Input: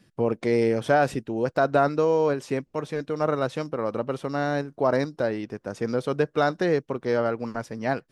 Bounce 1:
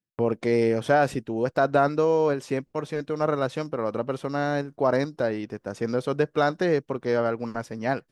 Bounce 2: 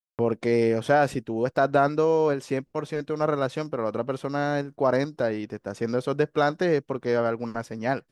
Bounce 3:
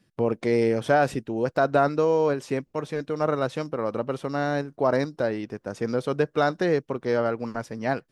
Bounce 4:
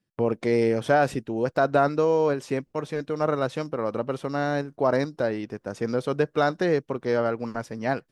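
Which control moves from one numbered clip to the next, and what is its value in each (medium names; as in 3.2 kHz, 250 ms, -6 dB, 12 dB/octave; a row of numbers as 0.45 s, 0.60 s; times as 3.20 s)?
gate, range: -33 dB, -55 dB, -6 dB, -20 dB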